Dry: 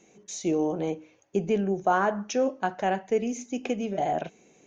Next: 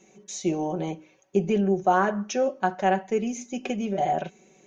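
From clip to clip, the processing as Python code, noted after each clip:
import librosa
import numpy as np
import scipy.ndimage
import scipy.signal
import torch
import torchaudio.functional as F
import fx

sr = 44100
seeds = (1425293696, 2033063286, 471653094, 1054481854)

y = x + 0.65 * np.pad(x, (int(5.3 * sr / 1000.0), 0))[:len(x)]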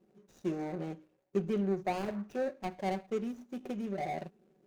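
y = scipy.ndimage.median_filter(x, 41, mode='constant')
y = y * librosa.db_to_amplitude(-8.0)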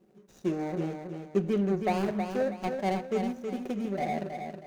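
y = fx.echo_feedback(x, sr, ms=320, feedback_pct=34, wet_db=-6.5)
y = y * librosa.db_to_amplitude(4.5)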